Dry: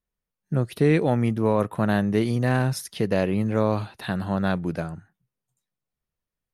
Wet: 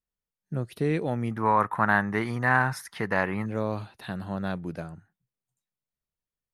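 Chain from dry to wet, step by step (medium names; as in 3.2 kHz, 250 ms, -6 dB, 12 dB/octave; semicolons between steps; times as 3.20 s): 1.31–3.46 s: high-order bell 1.3 kHz +15 dB; trim -7 dB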